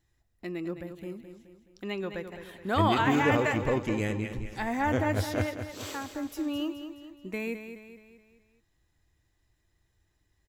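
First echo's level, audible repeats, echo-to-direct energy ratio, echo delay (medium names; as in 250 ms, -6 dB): -9.5 dB, 4, -8.5 dB, 212 ms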